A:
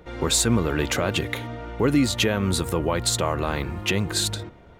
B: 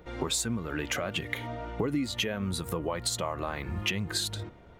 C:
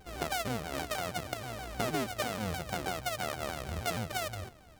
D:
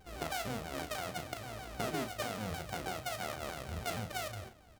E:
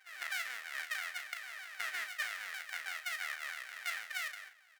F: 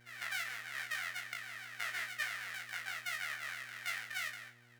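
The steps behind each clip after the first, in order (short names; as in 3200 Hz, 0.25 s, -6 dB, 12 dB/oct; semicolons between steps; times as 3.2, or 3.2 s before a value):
compressor 12:1, threshold -27 dBFS, peak gain reduction 12.5 dB; spectral noise reduction 6 dB; gain +2 dB
sample sorter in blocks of 64 samples; shaped vibrato saw down 6.3 Hz, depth 250 cents; gain -3.5 dB
flange 1.5 Hz, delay 0.9 ms, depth 8.7 ms, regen -80%; doubler 37 ms -8.5 dB
resonant high-pass 1800 Hz, resonance Q 4.8; gain -2.5 dB
chorus 0.42 Hz, delay 16 ms, depth 5.6 ms; buzz 120 Hz, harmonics 33, -69 dBFS -7 dB/oct; gain +2.5 dB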